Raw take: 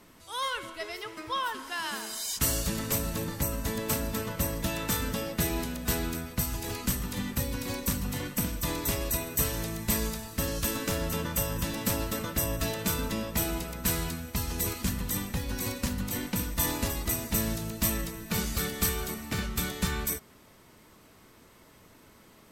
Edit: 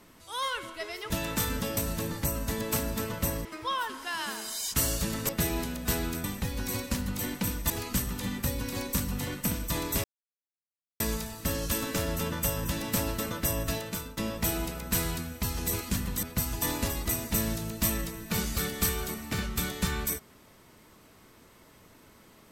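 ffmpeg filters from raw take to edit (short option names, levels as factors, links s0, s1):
-filter_complex "[0:a]asplit=12[s0][s1][s2][s3][s4][s5][s6][s7][s8][s9][s10][s11];[s0]atrim=end=1.102[s12];[s1]atrim=start=4.618:end=5.292[s13];[s2]atrim=start=2.938:end=4.622[s14];[s3]atrim=start=1.098:end=2.942[s15];[s4]atrim=start=5.288:end=6.242[s16];[s5]atrim=start=15.158:end=16.622[s17];[s6]atrim=start=6.628:end=8.97,asetpts=PTS-STARTPTS,afade=t=out:st=2.338:d=0.004:c=hsin[s18];[s7]atrim=start=8.97:end=9.93,asetpts=PTS-STARTPTS,volume=0[s19];[s8]atrim=start=9.93:end=13.1,asetpts=PTS-STARTPTS,afade=t=in:d=0.004:c=hsin,afade=t=out:st=2.66:d=0.51:silence=0.133352[s20];[s9]atrim=start=13.1:end=15.162,asetpts=PTS-STARTPTS,afade=t=in:d=0.004:c=hsin:silence=0.133352[s21];[s10]atrim=start=6.238:end=6.632[s22];[s11]atrim=start=16.618[s23];[s12][s13]acrossfade=d=0.004:c1=hsin:c2=hsin[s24];[s24][s14]acrossfade=d=0.004:c1=hsin:c2=hsin[s25];[s25][s15]acrossfade=d=0.004:c1=hsin:c2=hsin[s26];[s26][s16]acrossfade=d=0.004:c1=hsin:c2=hsin[s27];[s27][s17]acrossfade=d=0.004:c1=hsin:c2=hsin[s28];[s18][s19][s20][s21]concat=n=4:v=0:a=1[s29];[s28][s29]acrossfade=d=0.004:c1=hsin:c2=hsin[s30];[s30][s22]acrossfade=d=0.004:c1=hsin:c2=hsin[s31];[s31][s23]acrossfade=d=0.004:c1=hsin:c2=hsin"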